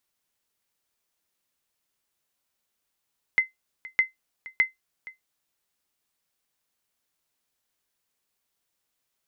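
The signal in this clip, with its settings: sonar ping 2.06 kHz, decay 0.15 s, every 0.61 s, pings 3, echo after 0.47 s, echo -20 dB -11.5 dBFS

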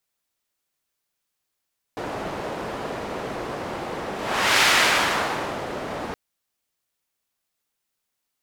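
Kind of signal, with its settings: whoosh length 4.17 s, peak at 2.66 s, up 0.54 s, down 1.11 s, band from 580 Hz, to 2.3 kHz, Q 0.77, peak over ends 13.5 dB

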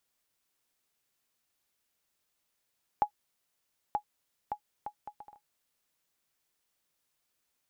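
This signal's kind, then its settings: bouncing ball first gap 0.93 s, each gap 0.61, 834 Hz, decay 87 ms -15.5 dBFS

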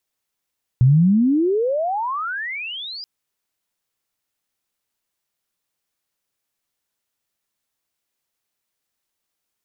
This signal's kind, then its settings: sweep logarithmic 120 Hz -> 5 kHz -9 dBFS -> -30 dBFS 2.23 s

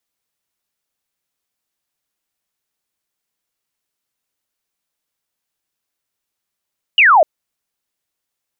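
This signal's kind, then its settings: laser zap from 3 kHz, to 580 Hz, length 0.25 s sine, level -6 dB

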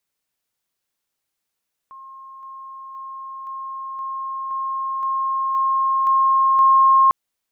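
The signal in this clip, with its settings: level ladder 1.07 kHz -37 dBFS, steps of 3 dB, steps 10, 0.52 s 0.00 s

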